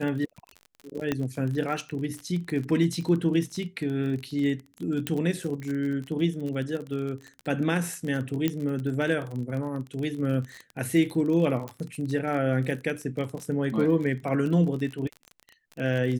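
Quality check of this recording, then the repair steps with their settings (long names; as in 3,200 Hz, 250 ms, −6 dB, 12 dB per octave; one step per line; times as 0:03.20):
surface crackle 32 per second −31 dBFS
0:01.12: click −13 dBFS
0:05.07: click −13 dBFS
0:08.48: click −13 dBFS
0:11.68: click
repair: click removal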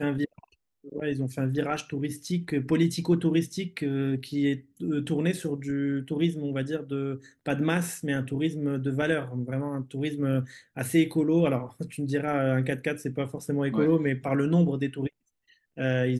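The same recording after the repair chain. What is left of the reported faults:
0:05.07: click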